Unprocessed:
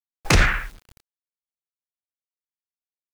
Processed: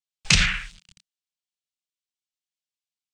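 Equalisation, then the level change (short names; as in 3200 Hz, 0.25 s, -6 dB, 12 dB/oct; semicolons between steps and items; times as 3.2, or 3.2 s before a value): EQ curve 110 Hz 0 dB, 180 Hz +7 dB, 280 Hz -11 dB, 810 Hz -7 dB, 1800 Hz +2 dB, 2900 Hz +13 dB, 8500 Hz +10 dB, 12000 Hz -15 dB; -6.5 dB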